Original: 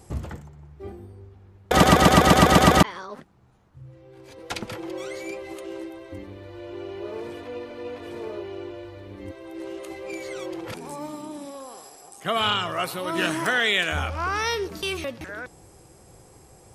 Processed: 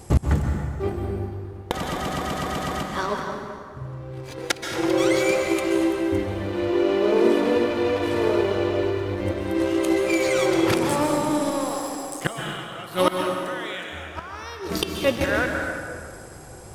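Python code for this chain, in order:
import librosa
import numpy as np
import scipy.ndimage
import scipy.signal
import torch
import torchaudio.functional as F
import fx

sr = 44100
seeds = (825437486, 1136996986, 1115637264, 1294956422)

y = fx.low_shelf_res(x, sr, hz=150.0, db=-13.5, q=3.0, at=(6.48, 7.56))
y = fx.leveller(y, sr, passes=1)
y = fx.gate_flip(y, sr, shuts_db=-15.0, range_db=-25)
y = fx.rev_plate(y, sr, seeds[0], rt60_s=2.2, hf_ratio=0.65, predelay_ms=115, drr_db=2.5)
y = y * 10.0 ** (8.5 / 20.0)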